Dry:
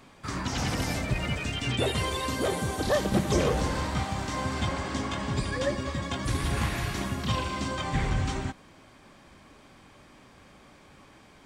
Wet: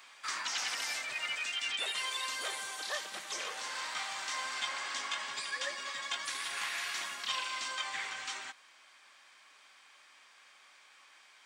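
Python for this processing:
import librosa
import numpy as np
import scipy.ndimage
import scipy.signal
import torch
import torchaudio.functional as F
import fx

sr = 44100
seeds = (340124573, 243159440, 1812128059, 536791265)

y = fx.rider(x, sr, range_db=5, speed_s=0.5)
y = scipy.signal.sosfilt(scipy.signal.butter(2, 1500.0, 'highpass', fs=sr, output='sos'), y)
y = fx.peak_eq(y, sr, hz=12000.0, db=-9.5, octaves=0.36)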